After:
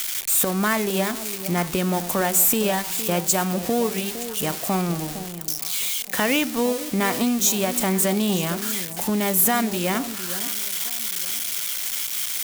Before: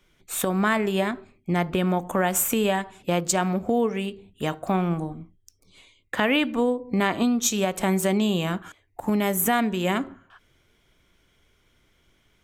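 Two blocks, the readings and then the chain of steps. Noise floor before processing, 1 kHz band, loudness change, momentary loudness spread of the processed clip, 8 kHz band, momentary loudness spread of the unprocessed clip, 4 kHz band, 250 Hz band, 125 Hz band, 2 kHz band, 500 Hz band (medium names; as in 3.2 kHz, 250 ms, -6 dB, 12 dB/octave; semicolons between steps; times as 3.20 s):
-65 dBFS, +0.5 dB, +2.5 dB, 8 LU, +8.0 dB, 10 LU, +5.5 dB, +0.5 dB, +0.5 dB, +1.5 dB, +0.5 dB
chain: zero-crossing glitches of -16.5 dBFS; echo whose repeats swap between lows and highs 460 ms, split 860 Hz, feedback 50%, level -11.5 dB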